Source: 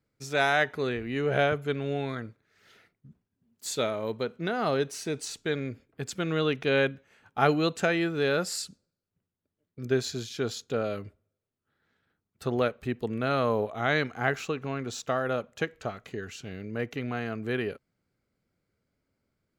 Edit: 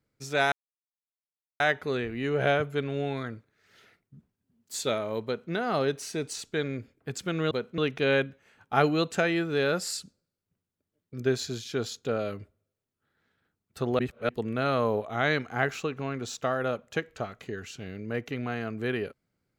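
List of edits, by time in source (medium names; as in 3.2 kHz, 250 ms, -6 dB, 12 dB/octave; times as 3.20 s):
0.52 s: insert silence 1.08 s
4.17–4.44 s: copy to 6.43 s
12.64–12.94 s: reverse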